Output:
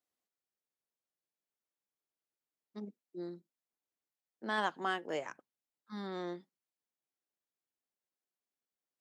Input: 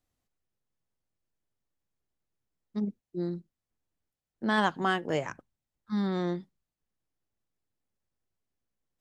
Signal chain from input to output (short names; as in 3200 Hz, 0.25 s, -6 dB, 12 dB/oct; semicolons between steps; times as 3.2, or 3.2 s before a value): HPF 310 Hz 12 dB/oct; gain -6.5 dB